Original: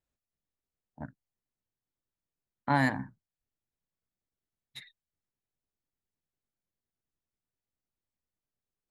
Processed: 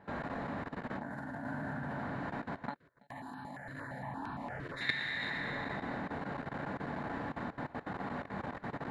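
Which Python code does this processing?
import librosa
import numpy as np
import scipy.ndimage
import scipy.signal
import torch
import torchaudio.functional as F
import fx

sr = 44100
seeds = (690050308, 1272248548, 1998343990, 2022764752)

y = fx.bin_compress(x, sr, power=0.6)
y = fx.env_lowpass(y, sr, base_hz=1400.0, full_db=-32.0)
y = fx.auto_swell(y, sr, attack_ms=100.0)
y = fx.rev_plate(y, sr, seeds[0], rt60_s=2.1, hf_ratio=0.75, predelay_ms=0, drr_db=-9.5)
y = fx.level_steps(y, sr, step_db=20)
y = fx.high_shelf(y, sr, hz=5700.0, db=5.0)
y = fx.over_compress(y, sr, threshold_db=-48.0, ratio=-0.5)
y = fx.low_shelf(y, sr, hz=68.0, db=-11.0)
y = y + 10.0 ** (-20.0 / 20.0) * np.pad(y, (int(330 * sr / 1000.0), 0))[:len(y)]
y = fx.phaser_held(y, sr, hz=8.7, low_hz=220.0, high_hz=2000.0, at=(2.76, 4.81))
y = y * 10.0 ** (8.5 / 20.0)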